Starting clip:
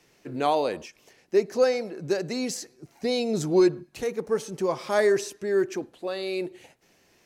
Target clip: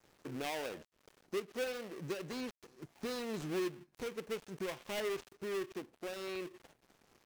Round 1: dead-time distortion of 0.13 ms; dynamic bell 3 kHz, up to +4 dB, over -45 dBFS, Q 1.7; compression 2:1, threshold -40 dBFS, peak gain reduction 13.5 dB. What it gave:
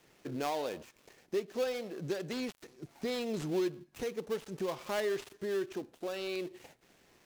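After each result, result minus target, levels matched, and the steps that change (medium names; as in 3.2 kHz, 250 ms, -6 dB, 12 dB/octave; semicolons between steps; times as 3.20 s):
dead-time distortion: distortion -8 dB; compression: peak gain reduction -4 dB
change: dead-time distortion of 0.32 ms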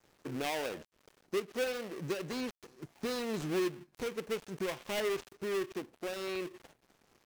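compression: peak gain reduction -4 dB
change: compression 2:1, threshold -48 dBFS, peak gain reduction 17.5 dB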